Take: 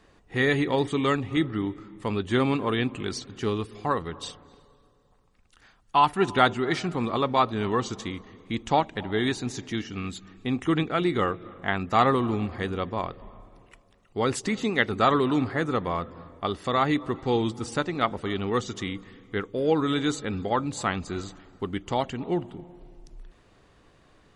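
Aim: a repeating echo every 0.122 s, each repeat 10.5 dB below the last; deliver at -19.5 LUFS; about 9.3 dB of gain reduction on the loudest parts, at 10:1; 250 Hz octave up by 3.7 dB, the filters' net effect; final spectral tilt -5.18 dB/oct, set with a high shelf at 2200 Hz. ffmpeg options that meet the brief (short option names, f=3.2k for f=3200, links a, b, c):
-af "equalizer=f=250:t=o:g=4.5,highshelf=f=2.2k:g=4,acompressor=threshold=-23dB:ratio=10,aecho=1:1:122|244|366:0.299|0.0896|0.0269,volume=9.5dB"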